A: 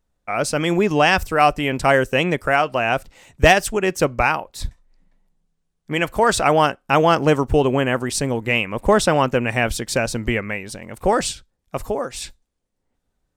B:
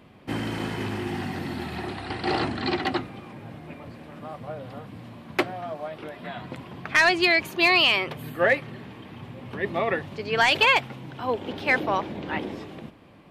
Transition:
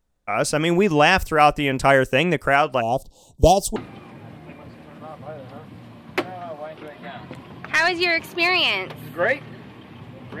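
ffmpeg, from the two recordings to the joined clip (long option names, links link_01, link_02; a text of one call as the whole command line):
ffmpeg -i cue0.wav -i cue1.wav -filter_complex "[0:a]asplit=3[link_01][link_02][link_03];[link_01]afade=type=out:start_time=2.8:duration=0.02[link_04];[link_02]asuperstop=centerf=1800:order=8:qfactor=0.73,afade=type=in:start_time=2.8:duration=0.02,afade=type=out:start_time=3.76:duration=0.02[link_05];[link_03]afade=type=in:start_time=3.76:duration=0.02[link_06];[link_04][link_05][link_06]amix=inputs=3:normalize=0,apad=whole_dur=10.4,atrim=end=10.4,atrim=end=3.762[link_07];[1:a]atrim=start=2.968:end=9.61[link_08];[link_07][link_08]acrossfade=duration=0.004:curve1=hsin:curve2=hsin" out.wav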